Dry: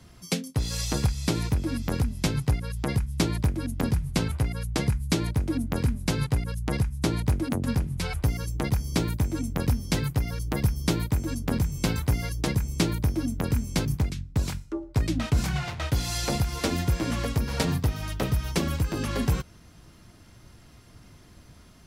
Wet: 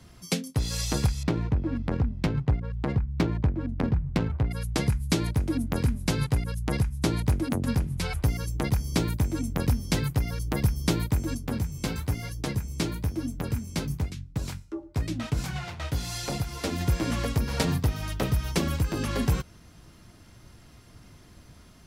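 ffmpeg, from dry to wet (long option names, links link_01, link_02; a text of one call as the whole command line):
ffmpeg -i in.wav -filter_complex "[0:a]asettb=1/sr,asplit=3[link_01][link_02][link_03];[link_01]atrim=end=1.234[link_04];[link_02]atrim=start=1.23:end=4.51,asetpts=PTS-STARTPTS,afade=type=in:duration=0.004:curve=qsin,afade=type=out:start_time=3.276:duration=0.004:curve=qsin,adynamicsmooth=sensitivity=2:basefreq=1200[link_05];[link_03]atrim=start=4.506[link_06];[link_04][link_05]acrossfade=duration=0.004:curve1=hsin:curve2=qsin[link_07];[link_07][link_06]acrossfade=duration=0.004:curve1=qsin:curve2=hsin,asettb=1/sr,asplit=3[link_08][link_09][link_10];[link_08]atrim=end=11.374[link_11];[link_09]atrim=start=11.37:end=16.81,asetpts=PTS-STARTPTS,afade=type=in:duration=0.004:curve=qsin,afade=type=out:start_time=5.436:duration=0.004:curve=qsin,flanger=delay=6:depth=8.5:regen=-44:speed=1:shape=triangular[link_12];[link_10]atrim=start=16.806[link_13];[link_11][link_12]acrossfade=duration=0.004:curve1=hsin:curve2=qsin[link_14];[link_14][link_13]acrossfade=duration=0.004:curve1=qsin:curve2=hsin" out.wav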